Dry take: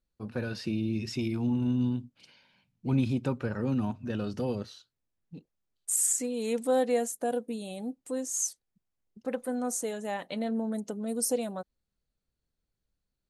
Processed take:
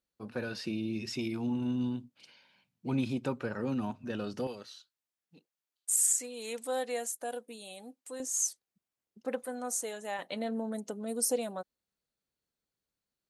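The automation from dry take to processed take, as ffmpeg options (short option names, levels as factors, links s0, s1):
-af "asetnsamples=n=441:p=0,asendcmd='4.47 highpass f 1200;8.2 highpass f 310;9.43 highpass f 710;10.19 highpass f 320',highpass=f=290:p=1"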